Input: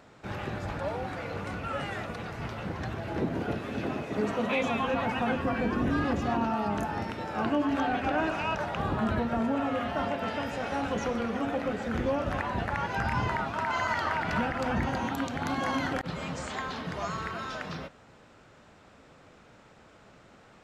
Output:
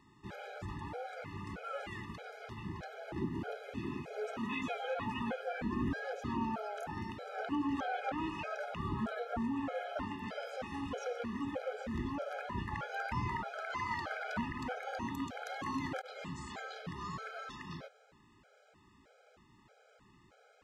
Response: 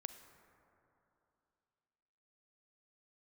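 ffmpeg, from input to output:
-af "afftfilt=real='re*gt(sin(2*PI*1.6*pts/sr)*(1-2*mod(floor(b*sr/1024/420),2)),0)':imag='im*gt(sin(2*PI*1.6*pts/sr)*(1-2*mod(floor(b*sr/1024/420),2)),0)':win_size=1024:overlap=0.75,volume=0.501"

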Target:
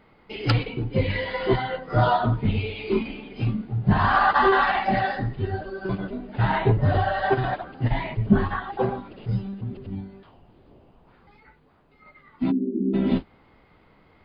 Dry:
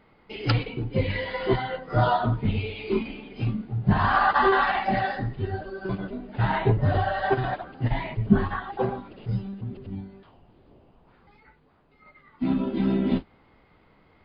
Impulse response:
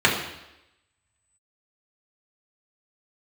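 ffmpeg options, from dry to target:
-filter_complex "[0:a]acontrast=41,asplit=3[s0][s1][s2];[s0]afade=t=out:st=12.5:d=0.02[s3];[s1]asuperpass=centerf=300:order=12:qfactor=1.2,afade=t=in:st=12.5:d=0.02,afade=t=out:st=12.93:d=0.02[s4];[s2]afade=t=in:st=12.93:d=0.02[s5];[s3][s4][s5]amix=inputs=3:normalize=0,volume=0.668"

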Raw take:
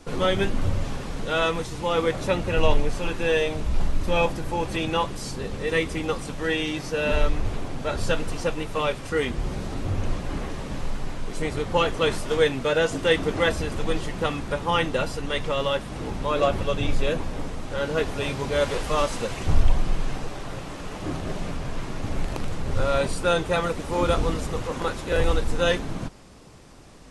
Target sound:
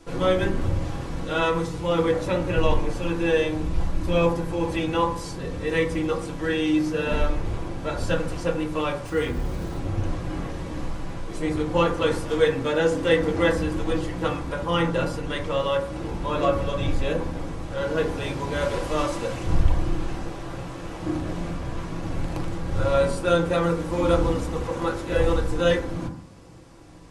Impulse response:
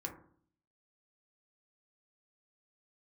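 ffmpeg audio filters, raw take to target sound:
-filter_complex "[0:a]asettb=1/sr,asplit=3[s0][s1][s2];[s0]atrim=end=9.054[s3];[s1]atrim=start=9.05:end=9.79,asetpts=PTS-STARTPTS,afade=t=in:d=0.004:c=qsin,afade=t=out:st=0.736:d=0.004:c=qsin,acrusher=bits=9:dc=4:mix=0:aa=0.000001[s4];[s2]atrim=start=9.786[s5];[s3][s4]acrossfade=d=0.004:c1=hsin:c2=qsin[s6];[s6][s5]acrossfade=d=0.004:c1=qsin:c2=hsin[s7];[1:a]atrim=start_sample=2205[s8];[s7][s8]afir=irnorm=-1:irlink=0"

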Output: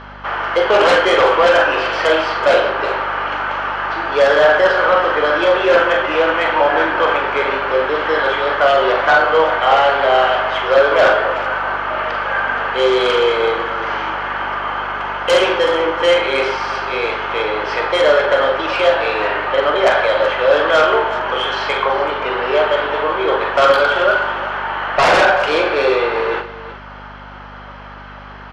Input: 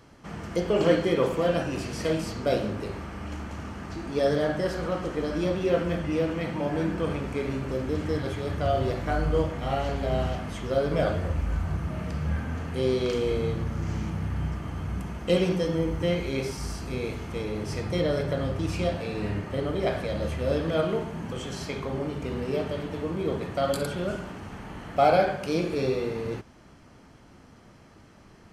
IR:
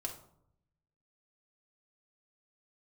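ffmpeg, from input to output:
-af "highpass=f=460:w=0.5412,highpass=f=460:w=1.3066,equalizer=f=470:t=q:w=4:g=-6,equalizer=f=690:t=q:w=4:g=-6,equalizer=f=1500:t=q:w=4:g=6,equalizer=f=3100:t=q:w=4:g=6,lowpass=f=4400:w=0.5412,lowpass=f=4400:w=1.3066,aeval=exprs='0.282*sin(PI/2*5.01*val(0)/0.282)':c=same,aecho=1:1:44|376:0.376|0.2,aeval=exprs='val(0)+0.0282*(sin(2*PI*50*n/s)+sin(2*PI*2*50*n/s)/2+sin(2*PI*3*50*n/s)/3+sin(2*PI*4*50*n/s)/4+sin(2*PI*5*50*n/s)/5)':c=same,equalizer=f=840:t=o:w=2.9:g=14.5,volume=0.398"

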